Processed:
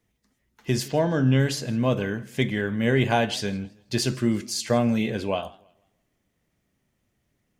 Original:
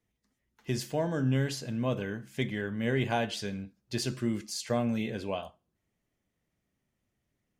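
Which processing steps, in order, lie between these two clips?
0.88–1.40 s: resonant high shelf 6.9 kHz -13 dB, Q 1.5; modulated delay 163 ms, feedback 31%, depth 156 cents, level -23.5 dB; trim +7.5 dB

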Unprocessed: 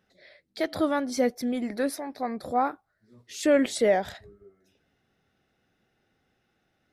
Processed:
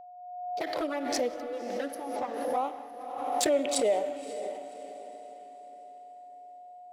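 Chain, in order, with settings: local Wiener filter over 25 samples; gate -54 dBFS, range -33 dB; high-pass 450 Hz 12 dB/octave; treble shelf 9.4 kHz +2 dB; band-stop 4.2 kHz, Q 19; in parallel at +2.5 dB: compression 8:1, threshold -33 dBFS, peak gain reduction 14.5 dB; on the sum: touch-sensitive flanger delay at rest 10.3 ms, full sweep at -19.5 dBFS; whistle 720 Hz -41 dBFS; on a send: echo that smears into a reverb 551 ms, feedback 42%, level -10 dB; on the sum: gated-style reverb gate 230 ms flat, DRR 11.5 dB; swell ahead of each attack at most 37 dB/s; trim -4 dB

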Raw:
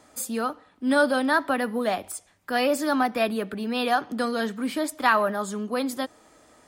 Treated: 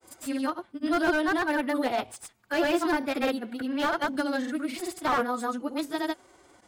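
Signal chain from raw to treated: granulator 100 ms, pitch spread up and down by 0 st; formant-preserving pitch shift +3 st; slew-rate limiter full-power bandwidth 82 Hz

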